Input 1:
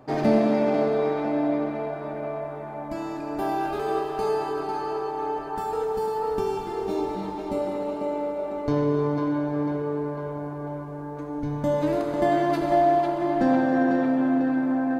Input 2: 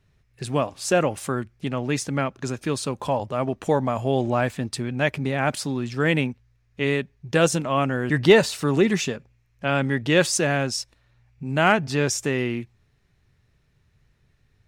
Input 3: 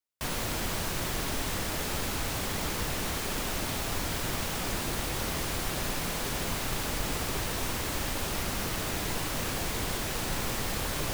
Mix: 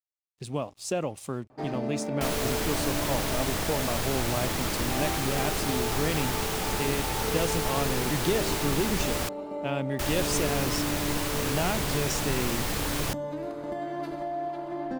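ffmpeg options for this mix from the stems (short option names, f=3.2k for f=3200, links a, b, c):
-filter_complex "[0:a]alimiter=limit=-17.5dB:level=0:latency=1:release=369,adelay=1500,volume=-7dB[a];[1:a]aeval=exprs='sgn(val(0))*max(abs(val(0))-0.00376,0)':c=same,equalizer=f=1.6k:t=o:w=0.77:g=-8.5,acompressor=threshold=-18dB:ratio=6,volume=-6dB[b];[2:a]adelay=2000,volume=2dB,asplit=3[c][d][e];[c]atrim=end=9.29,asetpts=PTS-STARTPTS,afade=t=out:st=9.286:d=0.004:c=hsin[f];[d]atrim=start=9.29:end=9.99,asetpts=PTS-STARTPTS,volume=0[g];[e]atrim=start=9.99,asetpts=PTS-STARTPTS,afade=t=in:d=0.004:c=hsin[h];[f][g][h]concat=n=3:v=0:a=1[i];[a][b][i]amix=inputs=3:normalize=0"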